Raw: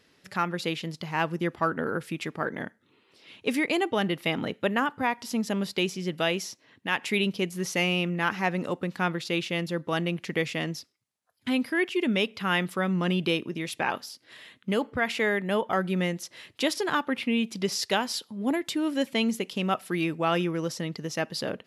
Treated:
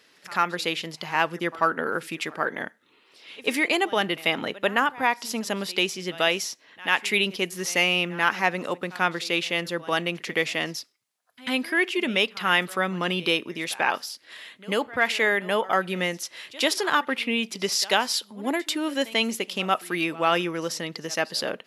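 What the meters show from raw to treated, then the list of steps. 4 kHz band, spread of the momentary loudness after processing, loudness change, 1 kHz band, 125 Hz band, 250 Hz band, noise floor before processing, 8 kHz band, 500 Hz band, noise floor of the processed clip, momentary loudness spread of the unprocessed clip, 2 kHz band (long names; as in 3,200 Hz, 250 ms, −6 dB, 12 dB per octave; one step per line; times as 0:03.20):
+6.0 dB, 9 LU, +3.0 dB, +4.5 dB, −5.0 dB, −2.5 dB, −66 dBFS, +6.0 dB, +2.0 dB, −60 dBFS, 7 LU, +5.5 dB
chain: high-pass filter 620 Hz 6 dB per octave
echo ahead of the sound 91 ms −20 dB
level +6 dB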